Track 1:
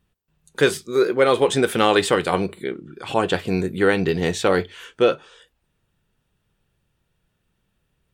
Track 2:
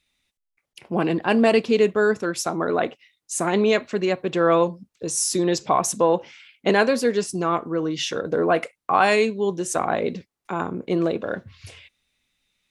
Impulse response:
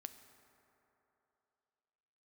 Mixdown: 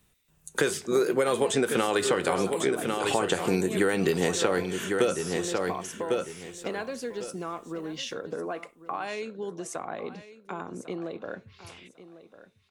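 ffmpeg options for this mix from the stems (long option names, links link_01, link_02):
-filter_complex "[0:a]highshelf=frequency=5400:width_type=q:width=1.5:gain=8,alimiter=limit=-10dB:level=0:latency=1:release=147,volume=2.5dB,asplit=3[link_01][link_02][link_03];[link_02]volume=-10.5dB[link_04];[link_03]volume=-8.5dB[link_05];[1:a]acompressor=threshold=-28dB:ratio=4,volume=-4dB,asplit=2[link_06][link_07];[link_07]volume=-15dB[link_08];[2:a]atrim=start_sample=2205[link_09];[link_04][link_09]afir=irnorm=-1:irlink=0[link_10];[link_05][link_08]amix=inputs=2:normalize=0,aecho=0:1:1099|2198|3297:1|0.2|0.04[link_11];[link_01][link_06][link_10][link_11]amix=inputs=4:normalize=0,lowshelf=frequency=190:gain=-4,acrossover=split=140|5000[link_12][link_13][link_14];[link_12]acompressor=threshold=-47dB:ratio=4[link_15];[link_13]acompressor=threshold=-22dB:ratio=4[link_16];[link_14]acompressor=threshold=-40dB:ratio=4[link_17];[link_15][link_16][link_17]amix=inputs=3:normalize=0"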